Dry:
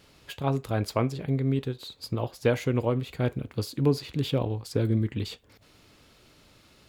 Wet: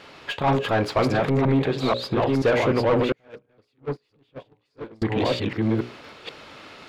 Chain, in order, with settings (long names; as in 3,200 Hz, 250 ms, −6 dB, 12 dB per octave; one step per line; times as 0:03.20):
delay that plays each chunk backwards 484 ms, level −2 dB
mains-hum notches 60/120/180/240/300/360/420/480/540/600 Hz
mid-hump overdrive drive 25 dB, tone 2,200 Hz, clips at −10.5 dBFS
0:03.12–0:05.02: noise gate −15 dBFS, range −41 dB
high-shelf EQ 6,100 Hz −11.5 dB